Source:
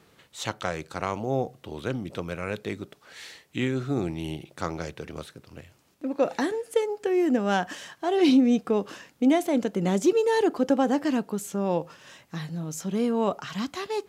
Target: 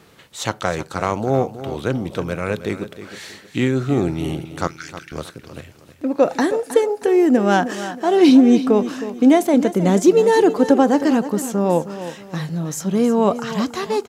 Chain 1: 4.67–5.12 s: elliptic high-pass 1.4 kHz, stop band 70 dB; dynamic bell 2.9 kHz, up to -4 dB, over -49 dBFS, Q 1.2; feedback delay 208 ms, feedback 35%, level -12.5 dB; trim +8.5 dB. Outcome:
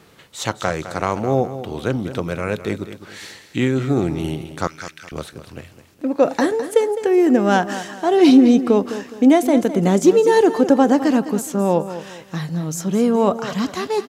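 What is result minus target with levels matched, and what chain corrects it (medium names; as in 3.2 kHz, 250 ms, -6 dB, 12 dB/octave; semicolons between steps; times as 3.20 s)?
echo 107 ms early
4.67–5.12 s: elliptic high-pass 1.4 kHz, stop band 70 dB; dynamic bell 2.9 kHz, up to -4 dB, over -49 dBFS, Q 1.2; feedback delay 315 ms, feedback 35%, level -12.5 dB; trim +8.5 dB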